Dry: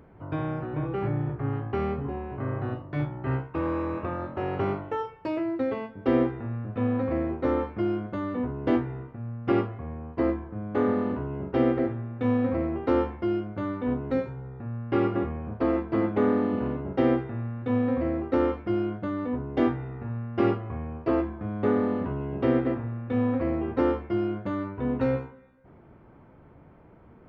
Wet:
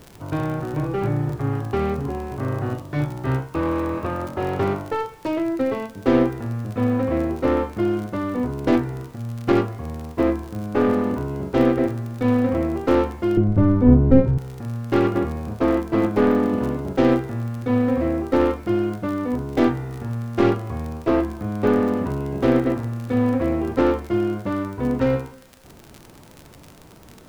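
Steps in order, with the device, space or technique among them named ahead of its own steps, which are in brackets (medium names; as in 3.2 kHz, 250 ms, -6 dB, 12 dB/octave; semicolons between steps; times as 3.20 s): record under a worn stylus (tracing distortion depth 0.12 ms; crackle 39 per s -34 dBFS; pink noise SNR 32 dB); 13.37–14.38 s: tilt EQ -4.5 dB/octave; trim +5.5 dB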